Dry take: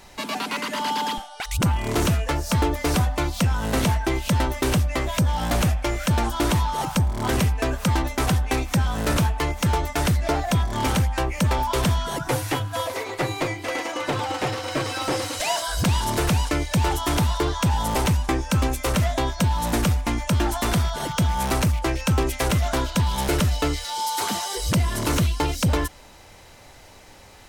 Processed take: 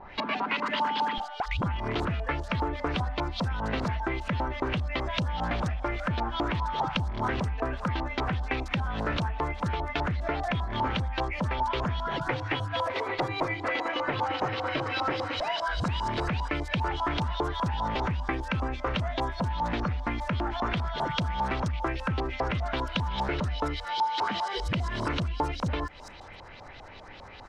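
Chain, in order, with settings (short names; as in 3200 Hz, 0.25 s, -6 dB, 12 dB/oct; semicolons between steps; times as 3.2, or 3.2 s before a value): compressor, threshold -28 dBFS, peak gain reduction 10 dB; LFO low-pass saw up 5 Hz 810–4500 Hz; bands offset in time lows, highs 0.48 s, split 5900 Hz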